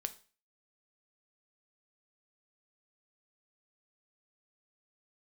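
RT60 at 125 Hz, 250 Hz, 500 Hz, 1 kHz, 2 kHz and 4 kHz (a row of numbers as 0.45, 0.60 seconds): 0.40, 0.40, 0.40, 0.40, 0.40, 0.40 seconds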